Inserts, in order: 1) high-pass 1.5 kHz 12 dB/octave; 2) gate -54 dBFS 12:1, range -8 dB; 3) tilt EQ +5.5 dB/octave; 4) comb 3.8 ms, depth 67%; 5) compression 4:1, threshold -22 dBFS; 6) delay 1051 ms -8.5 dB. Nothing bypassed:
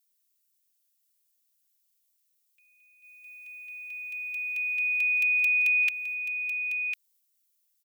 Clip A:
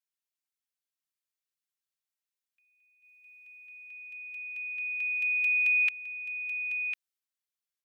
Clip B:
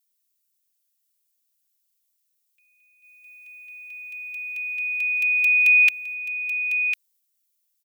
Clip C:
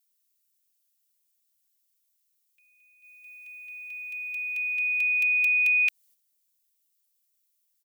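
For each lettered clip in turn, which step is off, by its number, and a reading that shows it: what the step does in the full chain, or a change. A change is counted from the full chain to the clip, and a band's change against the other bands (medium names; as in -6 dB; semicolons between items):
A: 3, momentary loudness spread change +1 LU; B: 5, loudness change +5.5 LU; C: 6, loudness change +2.5 LU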